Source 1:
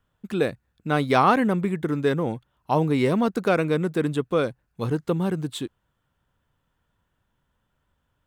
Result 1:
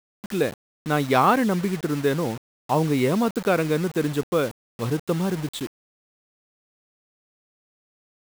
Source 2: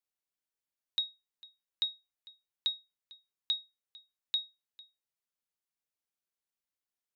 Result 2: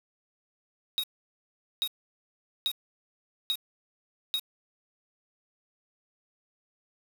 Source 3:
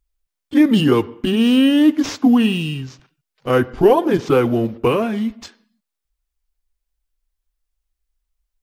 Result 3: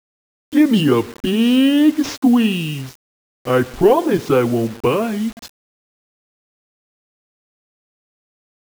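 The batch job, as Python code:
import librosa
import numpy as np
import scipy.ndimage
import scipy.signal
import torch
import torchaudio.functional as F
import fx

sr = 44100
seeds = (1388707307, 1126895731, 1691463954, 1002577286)

y = fx.quant_dither(x, sr, seeds[0], bits=6, dither='none')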